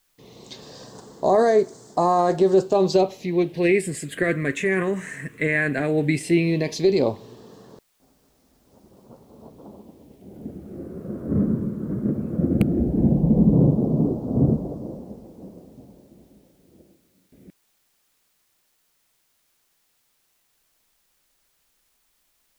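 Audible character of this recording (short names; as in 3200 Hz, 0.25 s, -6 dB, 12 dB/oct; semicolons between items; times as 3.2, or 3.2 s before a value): phasing stages 4, 0.15 Hz, lowest notch 770–2500 Hz; a quantiser's noise floor 12-bit, dither triangular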